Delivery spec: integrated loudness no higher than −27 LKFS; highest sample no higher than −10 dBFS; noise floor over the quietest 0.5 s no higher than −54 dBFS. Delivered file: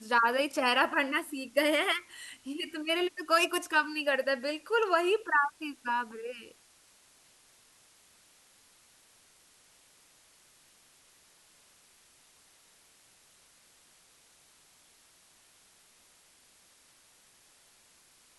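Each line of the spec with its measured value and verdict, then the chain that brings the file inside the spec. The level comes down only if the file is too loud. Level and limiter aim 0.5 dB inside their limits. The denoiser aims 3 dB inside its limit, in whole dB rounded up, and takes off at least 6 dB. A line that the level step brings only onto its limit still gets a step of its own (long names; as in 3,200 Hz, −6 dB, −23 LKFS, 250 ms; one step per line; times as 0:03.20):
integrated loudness −29.0 LKFS: in spec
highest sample −12.0 dBFS: in spec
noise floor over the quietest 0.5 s −63 dBFS: in spec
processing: no processing needed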